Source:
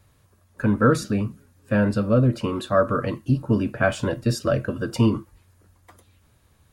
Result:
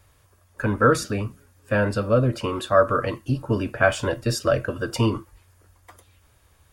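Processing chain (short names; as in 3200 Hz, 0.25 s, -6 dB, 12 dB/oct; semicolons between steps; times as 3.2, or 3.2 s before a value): bell 190 Hz -10.5 dB 1.4 oct; notch 4000 Hz, Q 16; gain +3.5 dB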